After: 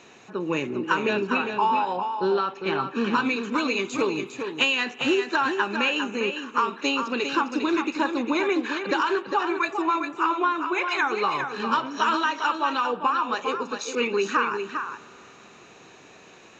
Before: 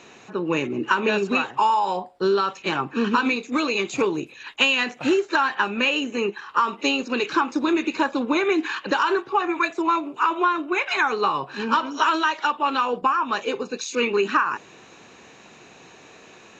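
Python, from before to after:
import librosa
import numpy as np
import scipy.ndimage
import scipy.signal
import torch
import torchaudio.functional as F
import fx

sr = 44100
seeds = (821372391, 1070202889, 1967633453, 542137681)

y = fx.lowpass(x, sr, hz=3700.0, slope=12, at=(1.13, 2.81))
y = y + 10.0 ** (-7.0 / 20.0) * np.pad(y, (int(403 * sr / 1000.0), 0))[:len(y)]
y = fx.rev_spring(y, sr, rt60_s=4.0, pass_ms=(43,), chirp_ms=50, drr_db=20.0)
y = y * 10.0 ** (-3.0 / 20.0)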